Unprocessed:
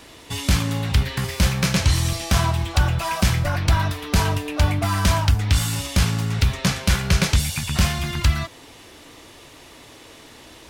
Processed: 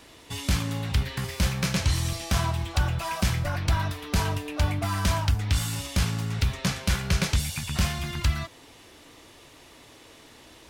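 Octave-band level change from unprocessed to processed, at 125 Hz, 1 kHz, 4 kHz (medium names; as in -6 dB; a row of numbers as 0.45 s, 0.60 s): -6.0 dB, -6.0 dB, -6.0 dB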